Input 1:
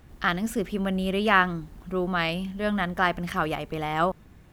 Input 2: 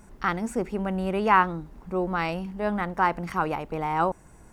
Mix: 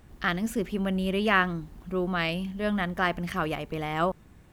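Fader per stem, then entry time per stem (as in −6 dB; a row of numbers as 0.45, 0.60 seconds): −2.0, −15.5 decibels; 0.00, 0.00 seconds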